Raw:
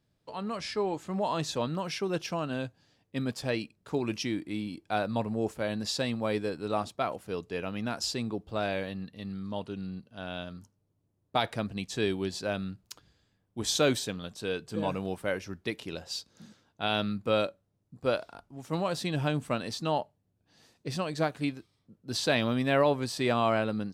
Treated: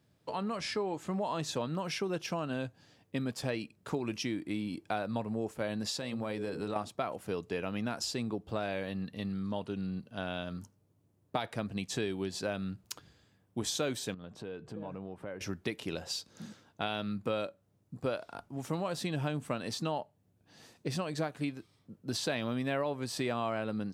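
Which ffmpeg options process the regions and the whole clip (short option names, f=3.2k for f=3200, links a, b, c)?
-filter_complex "[0:a]asettb=1/sr,asplit=3[a][b][c];[a]atrim=end=5.974[d];[b]atrim=start=5.97:end=6.76,asetpts=PTS-STARTPTS,afade=t=in:d=0.004:c=qsin,afade=t=out:st=0.786:d=0.004:c=qsin,bandreject=f=60:t=h:w=6,bandreject=f=120:t=h:w=6,bandreject=f=180:t=h:w=6,bandreject=f=240:t=h:w=6,bandreject=f=300:t=h:w=6,bandreject=f=360:t=h:w=6,bandreject=f=420:t=h:w=6,bandreject=f=480:t=h:w=6,bandreject=f=540:t=h:w=6,acompressor=threshold=-35dB:ratio=5:attack=3.2:release=140:knee=1:detection=peak[e];[c]atrim=start=6.756[f];[d][e]acrossfade=d=0.004:c1=hsin:c2=qsin[g];[g][f]acrossfade=d=0.004:c1=qsin:c2=hsin,asettb=1/sr,asplit=3[h][i][j];[h]atrim=end=14.144[k];[i]atrim=start=14.14:end=15.41,asetpts=PTS-STARTPTS,afade=t=in:d=0.004:c=qsin,afade=t=out:st=1.266:d=0.004:c=qsin,lowpass=f=1.1k:p=1,acompressor=threshold=-46dB:ratio=4:attack=3.2:release=140:knee=1:detection=peak[l];[j]atrim=start=15.406[m];[k][l]acrossfade=d=0.004:c1=hsin:c2=qsin[n];[n][m]acrossfade=d=0.004:c1=qsin:c2=hsin,acompressor=threshold=-38dB:ratio=4,highpass=73,equalizer=f=4.3k:w=1.5:g=-2.5,volume=5.5dB"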